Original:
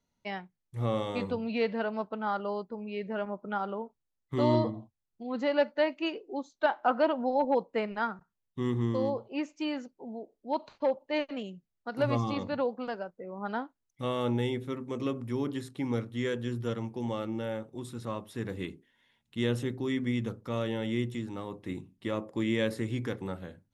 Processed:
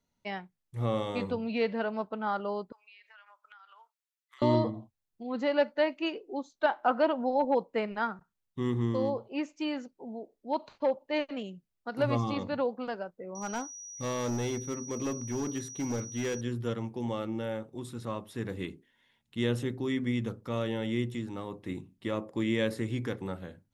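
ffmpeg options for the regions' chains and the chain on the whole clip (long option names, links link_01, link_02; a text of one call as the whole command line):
ffmpeg -i in.wav -filter_complex "[0:a]asettb=1/sr,asplit=3[link_01][link_02][link_03];[link_01]atrim=end=2.724[link_04];[link_02]atrim=start=2.72:end=4.42,asetpts=PTS-STARTPTS,afade=type=in:duration=0.004:curve=qsin,afade=type=out:start_time=1.696:duration=0.004:curve=qsin,highpass=frequency=1300:width=0.5412,highpass=frequency=1300:width=1.3066,acompressor=threshold=-51dB:ratio=12:attack=3.2:release=140:knee=1:detection=peak[link_05];[link_03]atrim=start=4.416[link_06];[link_04][link_05]acrossfade=duration=0.004:curve1=hsin:curve2=qsin[link_07];[link_07][link_06]acrossfade=duration=0.004:curve1=qsin:curve2=hsin,asettb=1/sr,asplit=3[link_08][link_09][link_10];[link_08]atrim=end=13.354[link_11];[link_09]atrim=start=13.35:end=16.41,asetpts=PTS-STARTPTS,afade=type=in:duration=0.004:curve=qsin,afade=type=out:start_time=3.056:duration=0.004:curve=qsin,aeval=exprs='val(0)+0.00794*sin(2*PI*5800*n/s)':channel_layout=same,asoftclip=type=hard:threshold=-28dB[link_12];[link_10]atrim=start=16.406[link_13];[link_11][link_12]acrossfade=duration=0.004:curve1=hsin:curve2=qsin[link_14];[link_14][link_13]acrossfade=duration=0.004:curve1=qsin:curve2=hsin" out.wav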